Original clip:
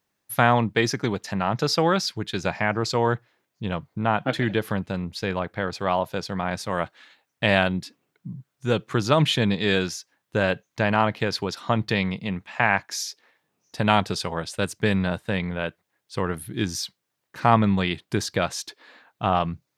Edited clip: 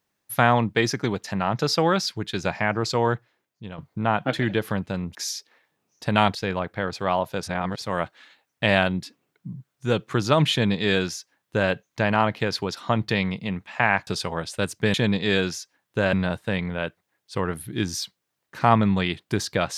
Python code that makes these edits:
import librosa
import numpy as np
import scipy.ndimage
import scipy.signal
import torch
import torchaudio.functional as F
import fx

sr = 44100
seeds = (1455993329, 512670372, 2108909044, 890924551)

y = fx.edit(x, sr, fx.fade_out_to(start_s=3.07, length_s=0.71, floor_db=-12.0),
    fx.reverse_span(start_s=6.23, length_s=0.39),
    fx.duplicate(start_s=9.32, length_s=1.19, to_s=14.94),
    fx.move(start_s=12.87, length_s=1.2, to_s=5.15), tone=tone)